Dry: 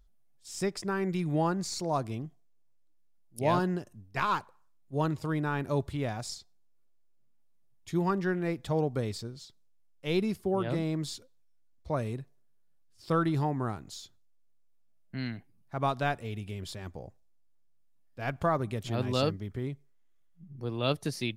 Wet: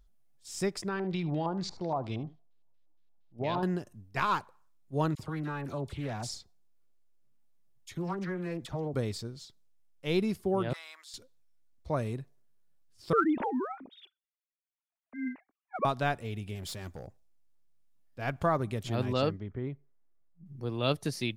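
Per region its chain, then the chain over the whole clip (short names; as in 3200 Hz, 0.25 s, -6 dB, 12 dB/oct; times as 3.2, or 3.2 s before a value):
0.88–3.63 LFO low-pass square 4.3 Hz 850–3800 Hz + compressor 3:1, threshold -29 dBFS + echo 74 ms -17.5 dB
5.15–8.94 compressor 3:1, threshold -32 dBFS + dispersion lows, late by 44 ms, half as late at 1200 Hz + Doppler distortion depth 0.25 ms
10.73–11.14 gate -34 dBFS, range -10 dB + HPF 1100 Hz 24 dB/oct
13.13–15.85 sine-wave speech + phaser 1.4 Hz, delay 4.2 ms, feedback 36%
16.55–17.07 high shelf 4400 Hz +7.5 dB + hard clip -36 dBFS
19.13–20.46 low-pass opened by the level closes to 1200 Hz, open at -23 dBFS + tone controls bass -2 dB, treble -8 dB + mismatched tape noise reduction decoder only
whole clip: dry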